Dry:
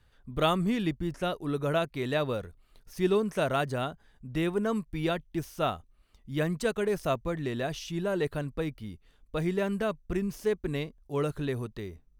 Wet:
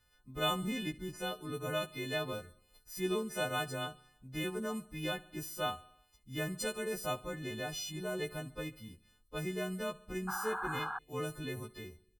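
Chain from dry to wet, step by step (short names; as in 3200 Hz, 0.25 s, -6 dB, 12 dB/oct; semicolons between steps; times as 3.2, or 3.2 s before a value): frequency quantiser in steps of 3 st; feedback echo 70 ms, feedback 58%, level -20 dB; painted sound noise, 10.27–10.99, 730–1700 Hz -30 dBFS; gain -8.5 dB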